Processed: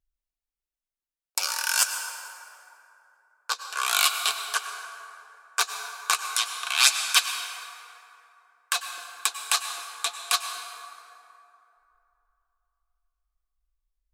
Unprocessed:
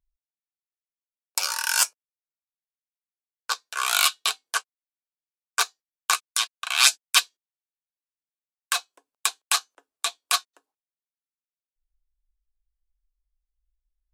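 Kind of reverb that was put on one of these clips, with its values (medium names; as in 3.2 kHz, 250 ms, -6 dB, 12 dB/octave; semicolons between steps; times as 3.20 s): plate-style reverb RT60 3 s, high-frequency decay 0.5×, pre-delay 85 ms, DRR 6 dB; trim -1.5 dB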